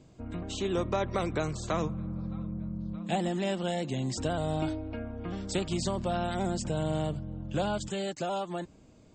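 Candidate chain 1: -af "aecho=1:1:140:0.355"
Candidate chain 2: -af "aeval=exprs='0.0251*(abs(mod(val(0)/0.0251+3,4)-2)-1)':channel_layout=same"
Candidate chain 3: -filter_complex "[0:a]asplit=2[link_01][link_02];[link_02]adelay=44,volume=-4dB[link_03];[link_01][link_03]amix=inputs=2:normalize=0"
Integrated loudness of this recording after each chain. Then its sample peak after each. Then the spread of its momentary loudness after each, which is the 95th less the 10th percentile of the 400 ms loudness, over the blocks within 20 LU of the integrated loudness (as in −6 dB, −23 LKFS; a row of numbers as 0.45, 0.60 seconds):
−32.5, −38.0, −31.5 LKFS; −17.0, −32.0, −15.5 dBFS; 7, 2, 8 LU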